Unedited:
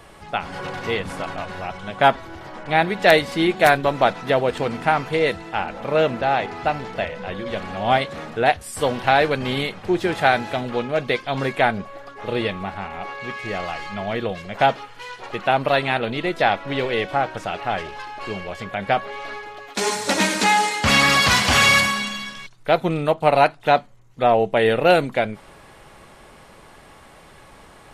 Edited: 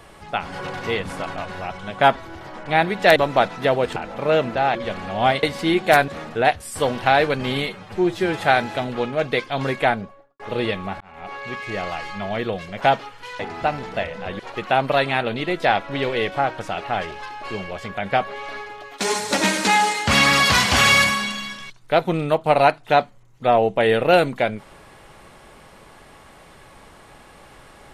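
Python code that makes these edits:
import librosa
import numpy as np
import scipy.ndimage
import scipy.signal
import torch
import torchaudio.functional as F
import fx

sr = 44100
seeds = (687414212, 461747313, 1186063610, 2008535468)

y = fx.studio_fade_out(x, sr, start_s=11.57, length_s=0.59)
y = fx.edit(y, sr, fx.move(start_s=3.16, length_s=0.65, to_s=8.09),
    fx.cut(start_s=4.61, length_s=1.01),
    fx.move(start_s=6.41, length_s=1.0, to_s=15.16),
    fx.stretch_span(start_s=9.68, length_s=0.49, factor=1.5),
    fx.fade_in_span(start_s=12.77, length_s=0.38), tone=tone)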